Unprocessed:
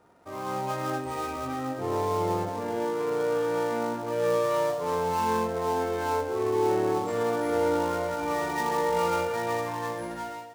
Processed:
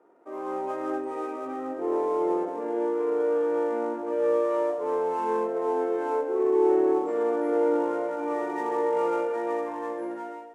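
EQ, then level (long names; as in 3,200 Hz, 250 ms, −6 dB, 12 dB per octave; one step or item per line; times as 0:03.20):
four-pole ladder high-pass 290 Hz, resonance 50%
high-frequency loss of the air 66 metres
parametric band 4,300 Hz −14 dB 1.4 octaves
+7.5 dB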